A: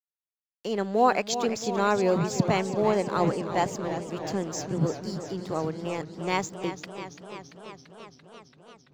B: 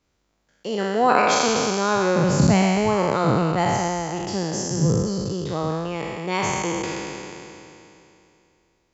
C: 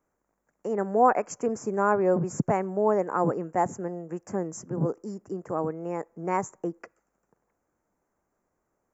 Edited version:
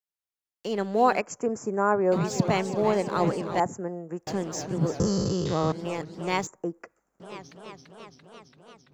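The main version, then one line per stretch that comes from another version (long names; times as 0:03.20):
A
0:01.21–0:02.12: punch in from C
0:03.60–0:04.27: punch in from C
0:05.00–0:05.72: punch in from B
0:06.47–0:07.20: punch in from C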